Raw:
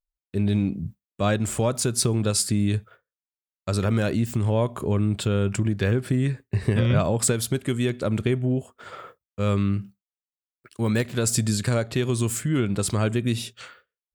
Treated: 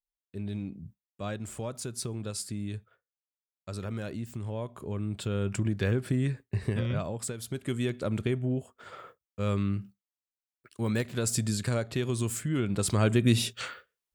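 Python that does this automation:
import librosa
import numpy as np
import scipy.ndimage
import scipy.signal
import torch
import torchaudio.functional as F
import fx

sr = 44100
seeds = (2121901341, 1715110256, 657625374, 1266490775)

y = fx.gain(x, sr, db=fx.line((4.75, -13.0), (5.65, -5.0), (6.45, -5.0), (7.35, -14.5), (7.72, -6.0), (12.59, -6.0), (13.61, 5.0)))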